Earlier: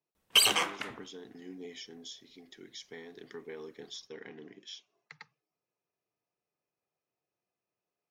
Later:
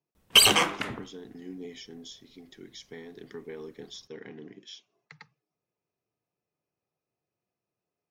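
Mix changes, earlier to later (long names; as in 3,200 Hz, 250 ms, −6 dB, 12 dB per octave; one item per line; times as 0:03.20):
background +5.5 dB
master: add low-shelf EQ 290 Hz +9.5 dB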